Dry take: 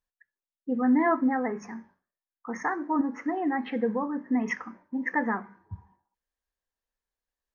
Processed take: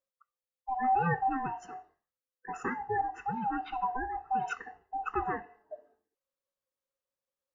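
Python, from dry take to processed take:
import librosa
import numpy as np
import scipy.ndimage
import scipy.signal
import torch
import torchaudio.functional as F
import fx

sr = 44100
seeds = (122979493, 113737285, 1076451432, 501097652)

y = fx.band_swap(x, sr, width_hz=500)
y = F.gain(torch.from_numpy(y), -5.0).numpy()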